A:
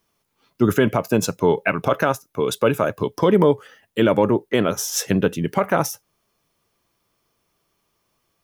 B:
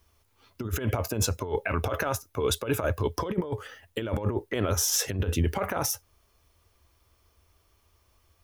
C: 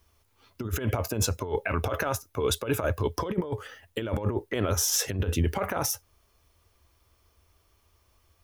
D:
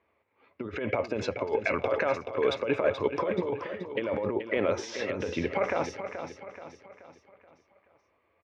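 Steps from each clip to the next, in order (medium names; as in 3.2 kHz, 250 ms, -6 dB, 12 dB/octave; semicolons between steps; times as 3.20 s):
resonant low shelf 110 Hz +11.5 dB, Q 3; compressor with a negative ratio -22 dBFS, ratio -0.5; peak limiter -13 dBFS, peak gain reduction 5 dB; trim -2.5 dB
no audible change
cabinet simulation 220–3800 Hz, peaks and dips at 540 Hz +6 dB, 1.4 kHz -4 dB, 2.2 kHz +8 dB, 3.2 kHz -6 dB; level-controlled noise filter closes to 2.1 kHz, open at -26.5 dBFS; feedback delay 429 ms, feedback 45%, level -9 dB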